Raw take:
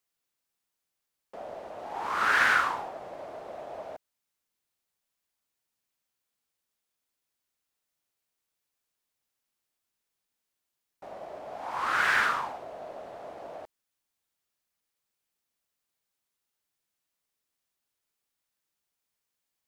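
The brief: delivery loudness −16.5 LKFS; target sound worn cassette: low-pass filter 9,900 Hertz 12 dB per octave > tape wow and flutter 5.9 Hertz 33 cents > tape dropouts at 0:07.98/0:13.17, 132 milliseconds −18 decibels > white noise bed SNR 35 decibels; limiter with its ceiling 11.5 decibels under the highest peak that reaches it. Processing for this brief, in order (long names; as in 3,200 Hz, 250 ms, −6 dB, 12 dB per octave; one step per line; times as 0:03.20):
brickwall limiter −22 dBFS
low-pass filter 9,900 Hz 12 dB per octave
tape wow and flutter 5.9 Hz 33 cents
tape dropouts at 0:07.98/0:13.17, 132 ms −18 dB
white noise bed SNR 35 dB
level +18.5 dB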